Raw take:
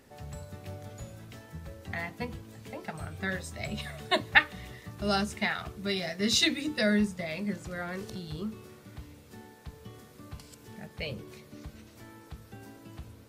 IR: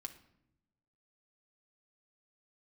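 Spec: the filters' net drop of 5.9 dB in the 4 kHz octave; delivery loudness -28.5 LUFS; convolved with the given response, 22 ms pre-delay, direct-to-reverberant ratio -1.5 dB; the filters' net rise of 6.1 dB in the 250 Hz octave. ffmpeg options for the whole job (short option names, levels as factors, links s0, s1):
-filter_complex "[0:a]equalizer=f=250:t=o:g=8,equalizer=f=4000:t=o:g=-7,asplit=2[s0][s1];[1:a]atrim=start_sample=2205,adelay=22[s2];[s1][s2]afir=irnorm=-1:irlink=0,volume=1.88[s3];[s0][s3]amix=inputs=2:normalize=0,volume=0.891"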